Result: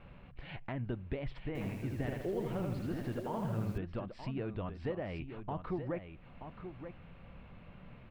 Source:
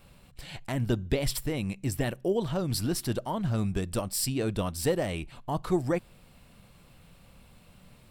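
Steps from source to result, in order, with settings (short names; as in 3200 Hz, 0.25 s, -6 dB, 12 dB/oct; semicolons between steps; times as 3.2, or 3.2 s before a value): LPF 2600 Hz 24 dB/oct; compressor 2:1, threshold -47 dBFS, peak gain reduction 14.5 dB; echo 0.928 s -9 dB; 1.47–3.78 lo-fi delay 80 ms, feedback 55%, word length 10-bit, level -3 dB; gain +2 dB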